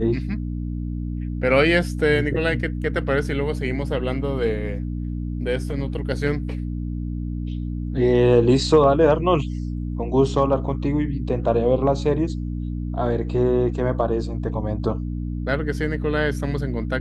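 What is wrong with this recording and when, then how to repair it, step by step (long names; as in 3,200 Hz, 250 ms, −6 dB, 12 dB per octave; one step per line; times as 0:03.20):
mains hum 60 Hz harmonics 5 −27 dBFS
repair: hum removal 60 Hz, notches 5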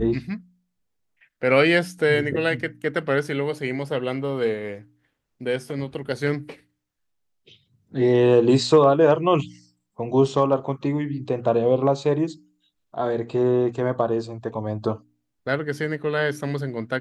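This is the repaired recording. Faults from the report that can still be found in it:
none of them is left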